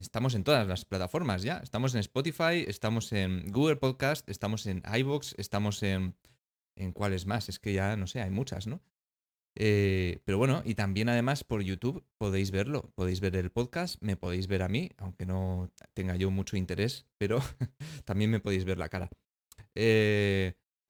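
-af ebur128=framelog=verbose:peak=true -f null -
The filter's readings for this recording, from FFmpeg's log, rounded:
Integrated loudness:
  I:         -31.5 LUFS
  Threshold: -41.7 LUFS
Loudness range:
  LRA:         3.4 LU
  Threshold: -52.2 LUFS
  LRA low:   -34.0 LUFS
  LRA high:  -30.6 LUFS
True peak:
  Peak:      -10.2 dBFS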